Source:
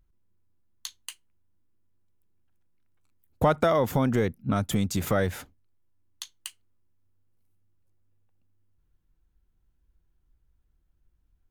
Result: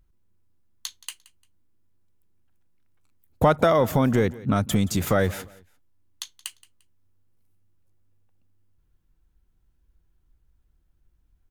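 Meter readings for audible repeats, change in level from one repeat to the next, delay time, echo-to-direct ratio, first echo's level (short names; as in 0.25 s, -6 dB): 2, -11.0 dB, 0.174 s, -19.5 dB, -20.0 dB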